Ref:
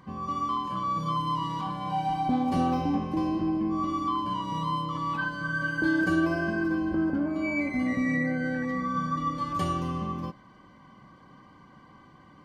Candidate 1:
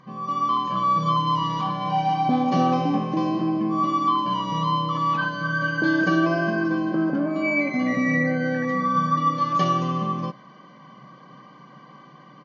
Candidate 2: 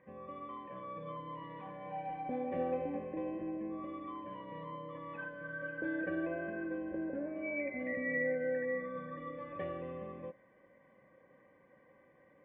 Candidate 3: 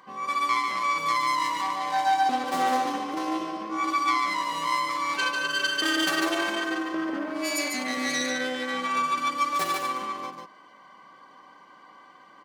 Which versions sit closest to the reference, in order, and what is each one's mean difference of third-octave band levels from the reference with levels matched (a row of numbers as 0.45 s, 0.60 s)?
1, 2, 3; 3.0 dB, 6.5 dB, 10.5 dB